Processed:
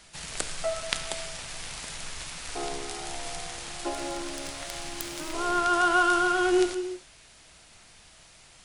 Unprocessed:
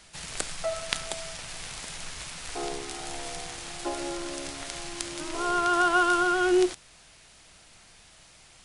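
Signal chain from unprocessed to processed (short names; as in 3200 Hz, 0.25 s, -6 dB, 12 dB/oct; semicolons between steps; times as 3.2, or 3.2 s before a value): 3.89–5.6 self-modulated delay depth 0.057 ms; non-linear reverb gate 0.33 s flat, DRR 9.5 dB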